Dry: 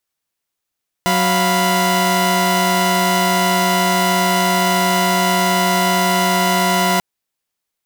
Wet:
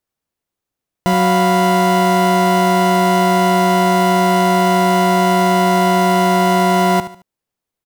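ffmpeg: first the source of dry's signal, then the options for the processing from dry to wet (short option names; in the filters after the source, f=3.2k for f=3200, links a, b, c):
-f lavfi -i "aevalsrc='0.168*((2*mod(185*t,1)-1)+(2*mod(698.46*t,1)-1)+(2*mod(987.77*t,1)-1))':d=5.94:s=44100"
-af "tiltshelf=f=970:g=6,aecho=1:1:73|146|219:0.211|0.074|0.0259"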